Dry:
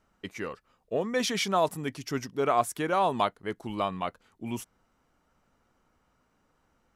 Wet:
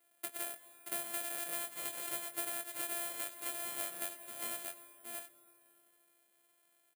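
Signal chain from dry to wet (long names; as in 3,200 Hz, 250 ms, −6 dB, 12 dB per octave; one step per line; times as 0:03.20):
samples sorted by size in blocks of 128 samples
brickwall limiter −18 dBFS, peak gain reduction 6.5 dB
high-pass filter 610 Hz 12 dB per octave
high-frequency loss of the air 100 metres
single-tap delay 626 ms −8.5 dB
convolution reverb RT60 3.1 s, pre-delay 55 ms, DRR 19 dB
downward compressor 6 to 1, threshold −39 dBFS, peak gain reduction 13 dB
parametric band 980 Hz −9 dB 0.7 octaves
double-tracking delay 22 ms −7 dB
bad sample-rate conversion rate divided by 4×, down filtered, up zero stuff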